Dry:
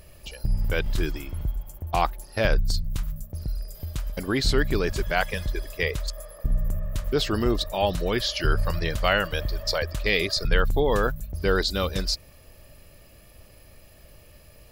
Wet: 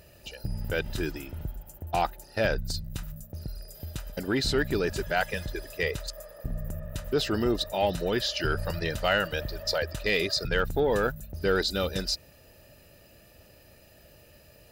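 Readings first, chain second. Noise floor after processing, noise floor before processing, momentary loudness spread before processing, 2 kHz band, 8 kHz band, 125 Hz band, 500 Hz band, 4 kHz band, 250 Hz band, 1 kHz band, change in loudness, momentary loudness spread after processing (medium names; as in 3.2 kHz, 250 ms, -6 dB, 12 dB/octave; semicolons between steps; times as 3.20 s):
-56 dBFS, -51 dBFS, 11 LU, -2.5 dB, -2.5 dB, -5.5 dB, -1.5 dB, -2.5 dB, -2.0 dB, -3.0 dB, -2.5 dB, 14 LU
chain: comb of notches 1.1 kHz; in parallel at -4.5 dB: saturation -21 dBFS, distortion -12 dB; on the sum: trim -4.5 dB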